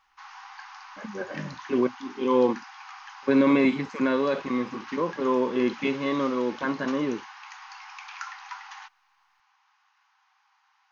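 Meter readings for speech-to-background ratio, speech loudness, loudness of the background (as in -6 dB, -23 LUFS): 16.5 dB, -26.0 LUFS, -42.5 LUFS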